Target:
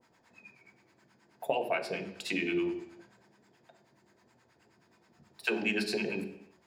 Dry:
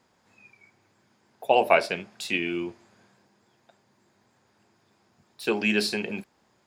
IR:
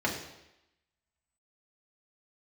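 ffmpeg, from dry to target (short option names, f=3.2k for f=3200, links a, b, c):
-filter_complex "[0:a]acompressor=threshold=-26dB:ratio=12,acrossover=split=700[a][b];[a]aeval=exprs='val(0)*(1-1/2+1/2*cos(2*PI*9.4*n/s))':c=same[c];[b]aeval=exprs='val(0)*(1-1/2-1/2*cos(2*PI*9.4*n/s))':c=same[d];[c][d]amix=inputs=2:normalize=0,asplit=2[e][f];[1:a]atrim=start_sample=2205,afade=t=out:st=0.44:d=0.01,atrim=end_sample=19845[g];[f][g]afir=irnorm=-1:irlink=0,volume=-9.5dB[h];[e][h]amix=inputs=2:normalize=0"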